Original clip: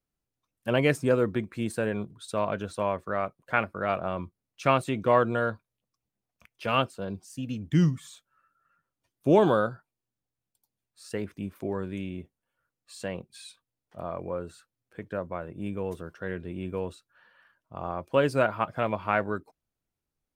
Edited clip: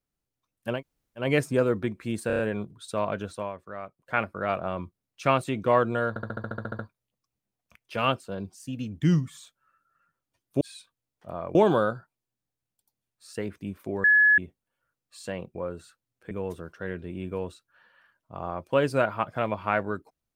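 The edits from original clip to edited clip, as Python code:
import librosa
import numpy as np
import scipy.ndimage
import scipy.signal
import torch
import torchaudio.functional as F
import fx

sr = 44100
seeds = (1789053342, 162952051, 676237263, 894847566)

y = fx.edit(x, sr, fx.insert_room_tone(at_s=0.75, length_s=0.48, crossfade_s=0.16),
    fx.stutter(start_s=1.79, slice_s=0.03, count=5),
    fx.fade_down_up(start_s=2.65, length_s=0.96, db=-9.0, fade_s=0.28),
    fx.stutter(start_s=5.49, slice_s=0.07, count=11),
    fx.bleep(start_s=11.8, length_s=0.34, hz=1700.0, db=-15.0),
    fx.move(start_s=13.31, length_s=0.94, to_s=9.31),
    fx.cut(start_s=15.01, length_s=0.71), tone=tone)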